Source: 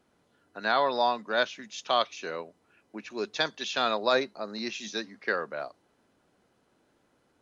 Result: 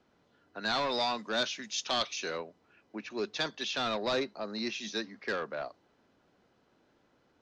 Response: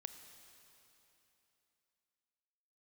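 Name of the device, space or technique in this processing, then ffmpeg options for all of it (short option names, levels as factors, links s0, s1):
one-band saturation: -filter_complex "[0:a]asettb=1/sr,asplit=3[s0][s1][s2];[s0]atrim=end=0.654[s3];[s1]atrim=start=0.65:end=2.38,asetpts=PTS-STARTPTS,afade=t=in:d=0.004:c=qsin,afade=t=out:st=1.726:d=0.004:c=qsin,aemphasis=mode=production:type=75kf[s4];[s2]atrim=start=2.376[s5];[s3][s4]acrossfade=d=0.004:c1=hsin:c2=qsin[s6];[s6][s5]acrossfade=d=0.004:c1=qsin:c2=hsin,acrossover=split=300|4300[s7][s8][s9];[s8]asoftclip=type=tanh:threshold=0.0355[s10];[s7][s10][s9]amix=inputs=3:normalize=0,lowpass=f=6200:w=0.5412,lowpass=f=6200:w=1.3066"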